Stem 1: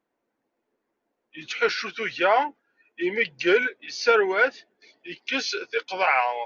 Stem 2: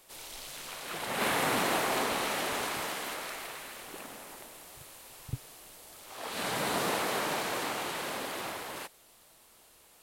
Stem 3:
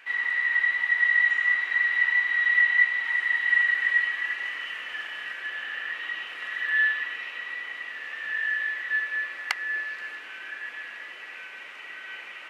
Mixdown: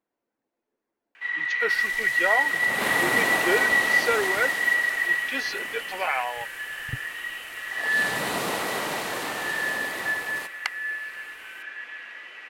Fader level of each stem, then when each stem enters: −5.5, +2.5, −1.0 decibels; 0.00, 1.60, 1.15 seconds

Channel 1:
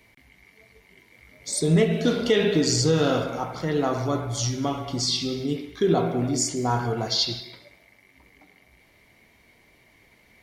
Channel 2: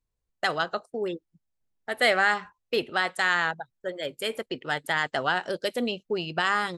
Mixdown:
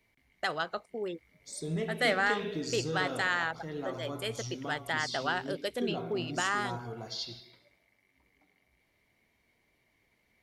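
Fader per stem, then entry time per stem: −14.5, −6.0 decibels; 0.00, 0.00 seconds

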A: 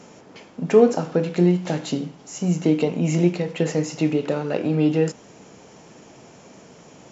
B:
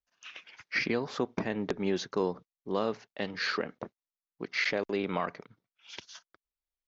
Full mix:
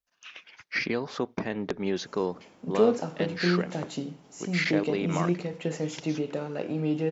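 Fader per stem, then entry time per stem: −8.5, +1.0 decibels; 2.05, 0.00 seconds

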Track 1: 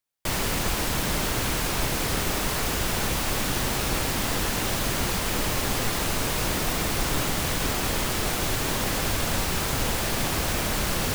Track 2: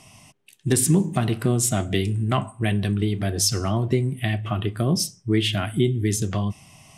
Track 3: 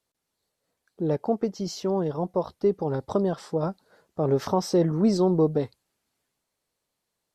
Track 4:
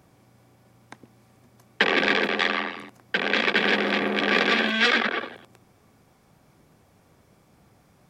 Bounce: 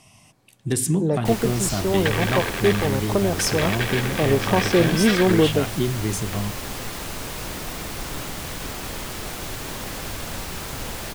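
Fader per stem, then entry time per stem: −5.5, −3.0, +3.0, −5.0 decibels; 1.00, 0.00, 0.00, 0.25 seconds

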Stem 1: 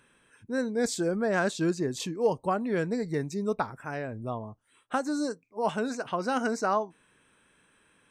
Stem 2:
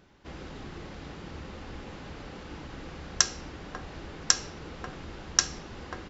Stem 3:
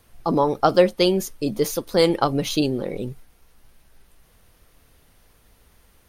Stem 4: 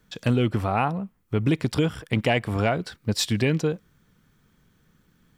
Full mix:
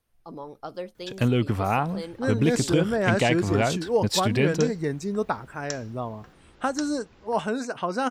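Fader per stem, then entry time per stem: +2.5, −13.0, −19.5, −0.5 decibels; 1.70, 1.40, 0.00, 0.95 seconds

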